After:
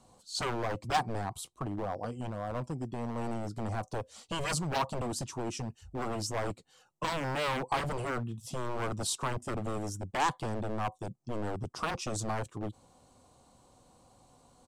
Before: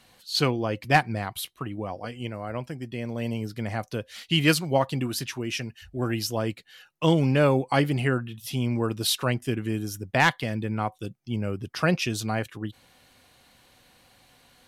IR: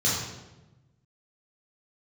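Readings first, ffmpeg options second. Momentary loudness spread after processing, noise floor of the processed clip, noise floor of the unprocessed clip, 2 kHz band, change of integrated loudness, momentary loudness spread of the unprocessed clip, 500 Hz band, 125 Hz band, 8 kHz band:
8 LU, -65 dBFS, -60 dBFS, -10.5 dB, -8.5 dB, 13 LU, -8.5 dB, -10.0 dB, -3.5 dB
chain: -filter_complex "[0:a]firequalizer=gain_entry='entry(1100,0);entry(1700,-20);entry(7800,1);entry(12000,-18)':delay=0.05:min_phase=1,acrossover=split=840[a][b];[a]aeval=exprs='0.0335*(abs(mod(val(0)/0.0335+3,4)-2)-1)':c=same[c];[c][b]amix=inputs=2:normalize=0"

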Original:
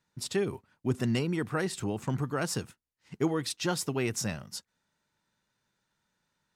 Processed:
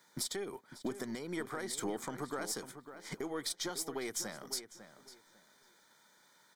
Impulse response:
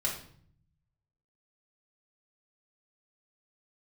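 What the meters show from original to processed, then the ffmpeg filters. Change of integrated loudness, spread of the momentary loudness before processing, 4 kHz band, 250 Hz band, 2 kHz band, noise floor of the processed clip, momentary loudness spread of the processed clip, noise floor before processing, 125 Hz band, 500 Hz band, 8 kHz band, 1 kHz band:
-7.5 dB, 7 LU, -3.5 dB, -10.0 dB, -7.0 dB, -67 dBFS, 16 LU, -82 dBFS, -18.0 dB, -8.0 dB, -2.0 dB, -6.0 dB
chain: -filter_complex "[0:a]highpass=320,acompressor=threshold=-50dB:ratio=3,alimiter=level_in=16.5dB:limit=-24dB:level=0:latency=1:release=344,volume=-16.5dB,aeval=exprs='0.01*(cos(1*acos(clip(val(0)/0.01,-1,1)))-cos(1*PI/2))+0.000501*(cos(4*acos(clip(val(0)/0.01,-1,1)))-cos(4*PI/2))':c=same,crystalizer=i=0.5:c=0,asuperstop=centerf=2700:order=8:qfactor=5.3,asplit=2[a][b];[b]adelay=550,lowpass=f=3k:p=1,volume=-11dB,asplit=2[c][d];[d]adelay=550,lowpass=f=3k:p=1,volume=0.22,asplit=2[e][f];[f]adelay=550,lowpass=f=3k:p=1,volume=0.22[g];[c][e][g]amix=inputs=3:normalize=0[h];[a][h]amix=inputs=2:normalize=0,volume=13dB"

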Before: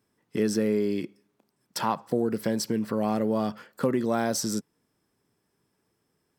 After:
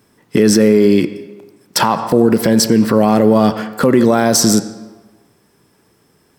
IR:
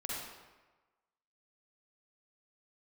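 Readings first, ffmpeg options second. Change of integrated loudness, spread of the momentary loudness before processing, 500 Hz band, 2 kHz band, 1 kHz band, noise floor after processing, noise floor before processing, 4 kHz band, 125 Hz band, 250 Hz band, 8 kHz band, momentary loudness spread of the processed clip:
+15.0 dB, 8 LU, +14.5 dB, +15.0 dB, +14.0 dB, -56 dBFS, -76 dBFS, +17.0 dB, +15.5 dB, +15.5 dB, +17.0 dB, 9 LU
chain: -filter_complex "[0:a]asplit=2[a][b];[1:a]atrim=start_sample=2205,lowpass=7.2k,adelay=35[c];[b][c]afir=irnorm=-1:irlink=0,volume=-16dB[d];[a][d]amix=inputs=2:normalize=0,alimiter=level_in=19.5dB:limit=-1dB:release=50:level=0:latency=1,volume=-1dB"

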